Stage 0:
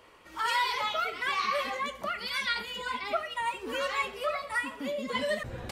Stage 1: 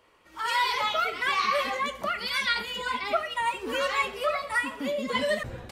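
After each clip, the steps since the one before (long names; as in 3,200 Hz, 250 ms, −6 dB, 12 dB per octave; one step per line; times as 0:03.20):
automatic gain control gain up to 10 dB
level −6 dB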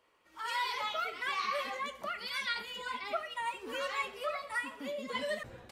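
low-shelf EQ 170 Hz −7.5 dB
level −8.5 dB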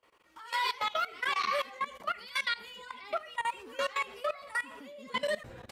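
output level in coarse steps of 18 dB
level +6.5 dB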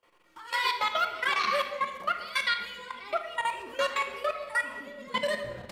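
in parallel at −7 dB: slack as between gear wheels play −49 dBFS
on the sum: rectangular room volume 1,200 cubic metres, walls mixed, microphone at 0.87 metres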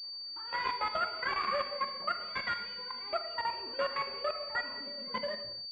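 fade-out on the ending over 0.64 s
switching amplifier with a slow clock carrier 4,600 Hz
level −4 dB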